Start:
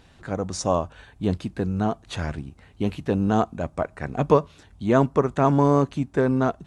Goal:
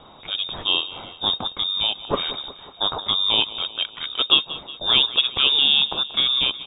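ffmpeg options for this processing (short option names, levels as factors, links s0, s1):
-af "aecho=1:1:183|366|549|732|915:0.15|0.0853|0.0486|0.0277|0.0158,aexciter=amount=11.6:drive=9.8:freq=3000,lowpass=f=3200:t=q:w=0.5098,lowpass=f=3200:t=q:w=0.6013,lowpass=f=3200:t=q:w=0.9,lowpass=f=3200:t=q:w=2.563,afreqshift=-3800"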